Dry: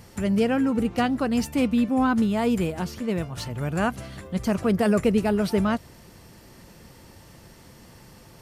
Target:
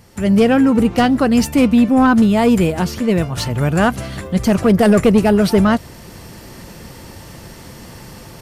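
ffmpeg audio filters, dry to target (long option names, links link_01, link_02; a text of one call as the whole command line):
ffmpeg -i in.wav -af "volume=14dB,asoftclip=hard,volume=-14dB,dynaudnorm=framelen=150:gausssize=3:maxgain=12.5dB,asoftclip=type=tanh:threshold=-2.5dB" out.wav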